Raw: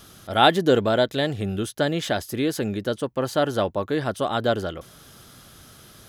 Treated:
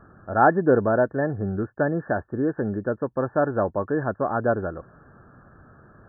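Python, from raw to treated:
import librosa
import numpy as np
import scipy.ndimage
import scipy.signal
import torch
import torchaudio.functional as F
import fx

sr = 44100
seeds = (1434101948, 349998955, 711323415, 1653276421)

y = fx.brickwall_lowpass(x, sr, high_hz=1800.0)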